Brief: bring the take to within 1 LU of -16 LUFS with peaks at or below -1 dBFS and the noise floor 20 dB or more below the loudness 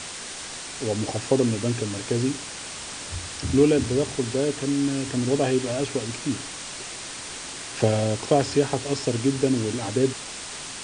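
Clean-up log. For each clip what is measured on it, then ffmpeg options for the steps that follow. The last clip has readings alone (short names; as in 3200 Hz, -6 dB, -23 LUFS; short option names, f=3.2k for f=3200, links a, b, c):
noise floor -36 dBFS; noise floor target -46 dBFS; loudness -25.5 LUFS; peak -6.0 dBFS; loudness target -16.0 LUFS
-> -af "afftdn=nr=10:nf=-36"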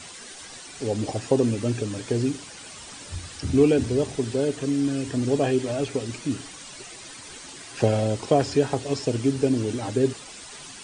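noise floor -42 dBFS; noise floor target -45 dBFS
-> -af "afftdn=nr=6:nf=-42"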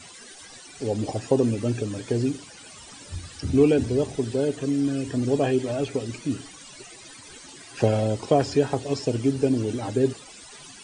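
noise floor -46 dBFS; loudness -25.0 LUFS; peak -6.0 dBFS; loudness target -16.0 LUFS
-> -af "volume=9dB,alimiter=limit=-1dB:level=0:latency=1"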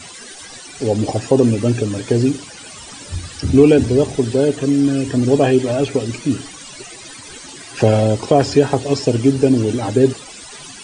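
loudness -16.0 LUFS; peak -1.0 dBFS; noise floor -37 dBFS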